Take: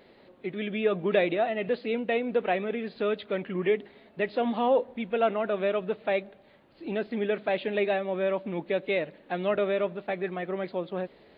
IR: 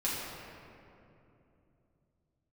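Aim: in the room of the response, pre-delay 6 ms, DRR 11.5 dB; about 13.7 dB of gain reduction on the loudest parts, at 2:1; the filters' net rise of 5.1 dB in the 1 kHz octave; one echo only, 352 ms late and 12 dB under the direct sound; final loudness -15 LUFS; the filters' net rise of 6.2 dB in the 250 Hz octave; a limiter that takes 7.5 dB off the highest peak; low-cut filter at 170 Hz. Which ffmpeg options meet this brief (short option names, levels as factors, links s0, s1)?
-filter_complex "[0:a]highpass=170,equalizer=f=250:t=o:g=9,equalizer=f=1000:t=o:g=7,acompressor=threshold=0.00891:ratio=2,alimiter=level_in=1.5:limit=0.0631:level=0:latency=1,volume=0.668,aecho=1:1:352:0.251,asplit=2[s0][s1];[1:a]atrim=start_sample=2205,adelay=6[s2];[s1][s2]afir=irnorm=-1:irlink=0,volume=0.119[s3];[s0][s3]amix=inputs=2:normalize=0,volume=13.3"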